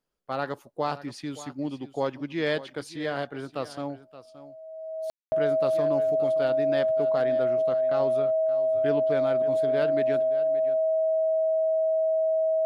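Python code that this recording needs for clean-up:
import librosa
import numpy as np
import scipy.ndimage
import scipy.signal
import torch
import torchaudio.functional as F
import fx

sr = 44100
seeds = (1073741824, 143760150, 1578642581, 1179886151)

y = fx.notch(x, sr, hz=640.0, q=30.0)
y = fx.fix_ambience(y, sr, seeds[0], print_start_s=0.0, print_end_s=0.5, start_s=5.1, end_s=5.32)
y = fx.fix_echo_inverse(y, sr, delay_ms=573, level_db=-15.5)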